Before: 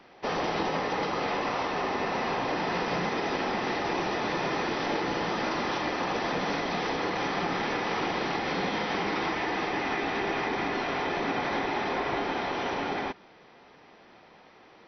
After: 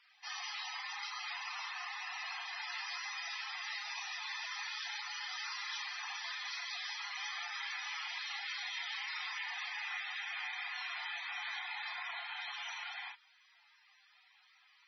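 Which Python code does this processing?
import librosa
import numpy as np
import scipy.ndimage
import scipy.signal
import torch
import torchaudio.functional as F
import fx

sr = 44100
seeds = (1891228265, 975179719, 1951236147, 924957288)

y = scipy.signal.sosfilt(scipy.signal.butter(2, 870.0, 'highpass', fs=sr, output='sos'), x)
y = np.diff(y, prepend=0.0)
y = fx.doubler(y, sr, ms=32.0, db=-5)
y = fx.spec_topn(y, sr, count=64)
y = F.gain(torch.from_numpy(y), 4.0).numpy()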